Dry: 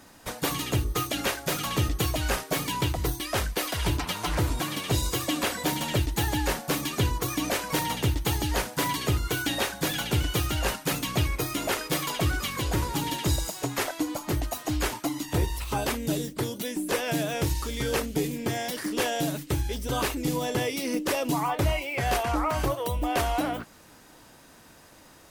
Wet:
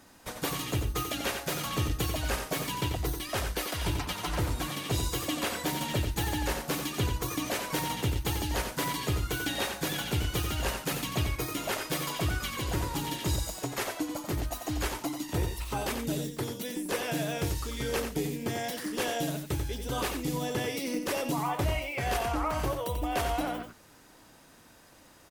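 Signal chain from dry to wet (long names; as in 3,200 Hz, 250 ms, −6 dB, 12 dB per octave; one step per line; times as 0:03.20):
single-tap delay 90 ms −7 dB
level −4.5 dB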